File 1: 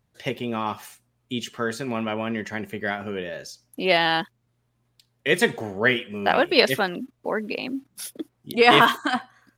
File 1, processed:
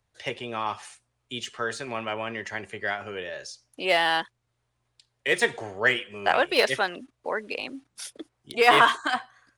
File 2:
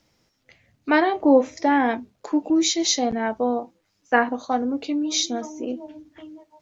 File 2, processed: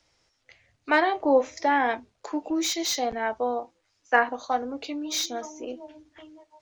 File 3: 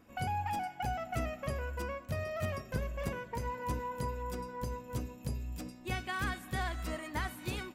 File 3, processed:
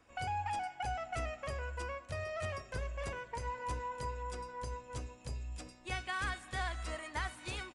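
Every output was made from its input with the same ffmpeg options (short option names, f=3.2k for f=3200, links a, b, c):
-filter_complex "[0:a]equalizer=f=200:w=0.83:g=-13,aresample=22050,aresample=44100,acrossover=split=120|710|2300[a][b][c][d];[d]asoftclip=type=tanh:threshold=-25dB[e];[a][b][c][e]amix=inputs=4:normalize=0"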